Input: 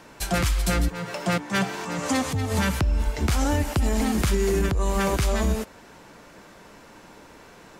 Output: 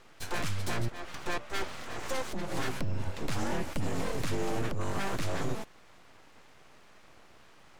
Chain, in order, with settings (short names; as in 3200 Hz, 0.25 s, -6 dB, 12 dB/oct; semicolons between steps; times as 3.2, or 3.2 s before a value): high shelf 8800 Hz -11.5 dB; full-wave rectifier; gain -6.5 dB